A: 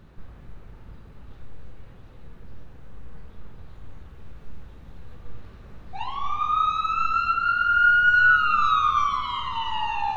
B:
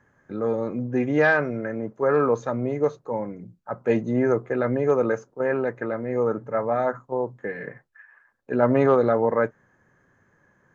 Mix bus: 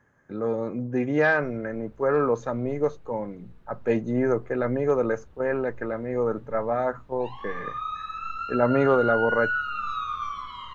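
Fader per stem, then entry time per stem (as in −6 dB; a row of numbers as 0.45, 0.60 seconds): −10.0, −2.0 decibels; 1.25, 0.00 seconds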